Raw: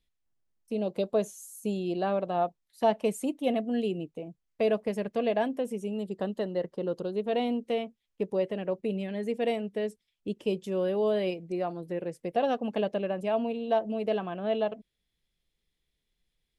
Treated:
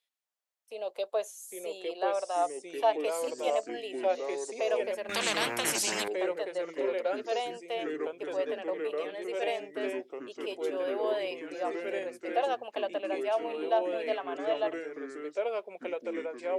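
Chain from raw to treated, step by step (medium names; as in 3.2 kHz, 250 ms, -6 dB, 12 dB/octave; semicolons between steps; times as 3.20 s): high-pass 550 Hz 24 dB/octave; ever faster or slower copies 671 ms, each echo -3 st, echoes 3; 5.09–6.08 s: spectrum-flattening compressor 4:1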